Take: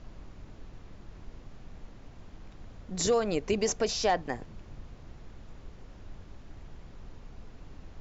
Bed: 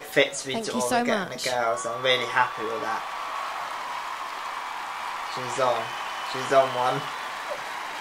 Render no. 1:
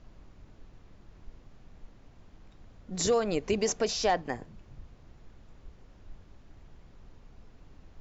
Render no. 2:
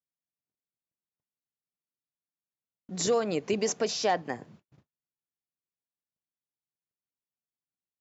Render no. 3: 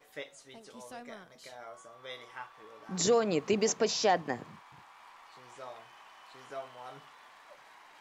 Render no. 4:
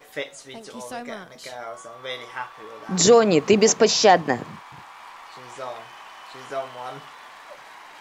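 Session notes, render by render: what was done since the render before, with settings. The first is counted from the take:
noise print and reduce 6 dB
high-pass 120 Hz 24 dB/octave; gate -53 dBFS, range -48 dB
add bed -22.5 dB
trim +12 dB

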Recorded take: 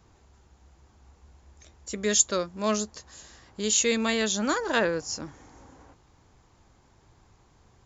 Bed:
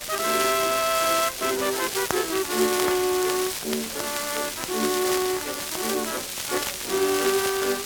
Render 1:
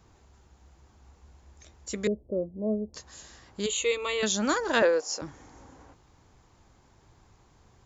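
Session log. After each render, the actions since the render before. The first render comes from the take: 2.07–2.94 s: steep low-pass 600 Hz; 3.66–4.23 s: static phaser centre 1.1 kHz, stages 8; 4.82–5.22 s: resonant high-pass 480 Hz, resonance Q 1.9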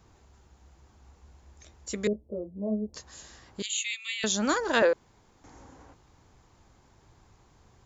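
2.13–2.87 s: three-phase chorus; 3.62–4.24 s: steep high-pass 1.9 kHz; 4.93–5.44 s: room tone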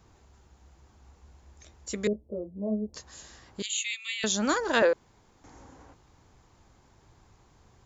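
no audible change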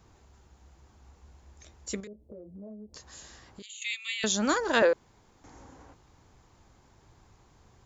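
2.00–3.82 s: compression 8:1, threshold -42 dBFS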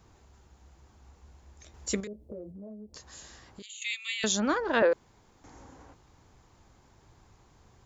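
1.74–2.52 s: gain +4.5 dB; 4.40–4.92 s: distance through air 260 m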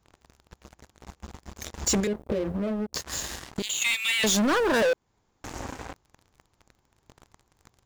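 waveshaping leveller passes 5; compression 2:1, threshold -27 dBFS, peak gain reduction 6.5 dB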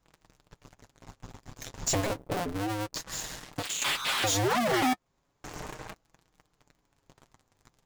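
cycle switcher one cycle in 2, inverted; flange 0.33 Hz, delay 6.1 ms, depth 1.9 ms, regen -32%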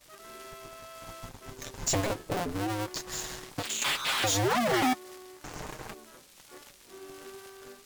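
add bed -24 dB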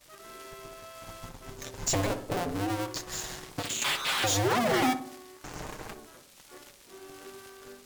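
filtered feedback delay 61 ms, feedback 56%, low-pass 1 kHz, level -8 dB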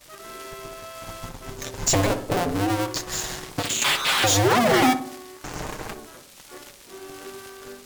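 trim +7.5 dB

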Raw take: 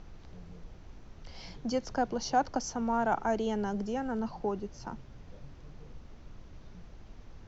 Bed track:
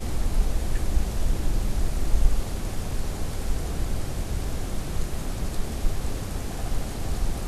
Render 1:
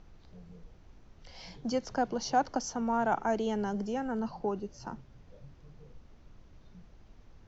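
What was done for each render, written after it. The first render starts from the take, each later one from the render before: noise print and reduce 6 dB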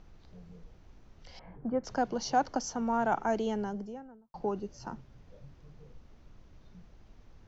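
1.39–1.84 s: inverse Chebyshev low-pass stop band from 6.8 kHz, stop band 70 dB; 3.37–4.34 s: studio fade out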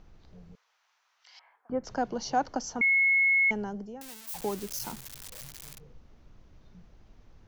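0.55–1.70 s: high-pass 980 Hz 24 dB/octave; 2.81–3.51 s: bleep 2.18 kHz -20 dBFS; 4.01–5.80 s: zero-crossing glitches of -27.5 dBFS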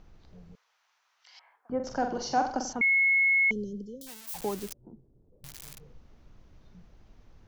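1.75–2.73 s: flutter echo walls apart 7.7 m, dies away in 0.46 s; 3.51–4.07 s: brick-wall FIR band-stop 570–3000 Hz; 4.73–5.44 s: four-pole ladder low-pass 460 Hz, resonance 45%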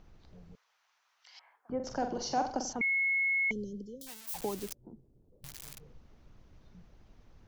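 harmonic-percussive split harmonic -4 dB; dynamic bell 1.4 kHz, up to -6 dB, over -47 dBFS, Q 1.4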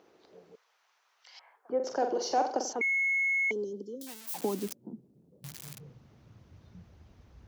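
in parallel at -11 dB: saturation -36 dBFS, distortion -8 dB; on the sum: high-pass sweep 400 Hz -> 63 Hz, 3.40–7.38 s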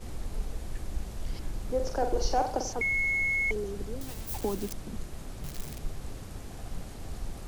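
add bed track -11 dB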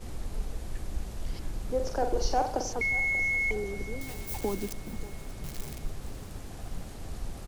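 feedback delay 585 ms, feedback 50%, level -18 dB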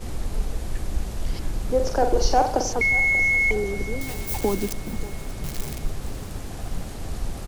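trim +8 dB

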